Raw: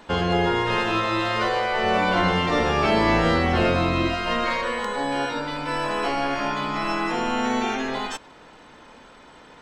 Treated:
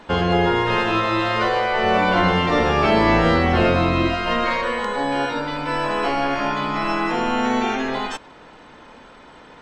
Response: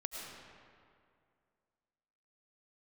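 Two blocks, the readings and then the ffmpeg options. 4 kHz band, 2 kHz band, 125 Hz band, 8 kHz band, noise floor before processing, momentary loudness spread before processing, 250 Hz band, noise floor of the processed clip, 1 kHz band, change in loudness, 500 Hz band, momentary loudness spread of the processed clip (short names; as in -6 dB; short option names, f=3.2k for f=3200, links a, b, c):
+1.5 dB, +3.0 dB, +3.5 dB, -1.5 dB, -48 dBFS, 7 LU, +3.5 dB, -45 dBFS, +3.5 dB, +3.0 dB, +3.5 dB, 7 LU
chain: -af "highshelf=f=6.2k:g=-9,volume=3.5dB"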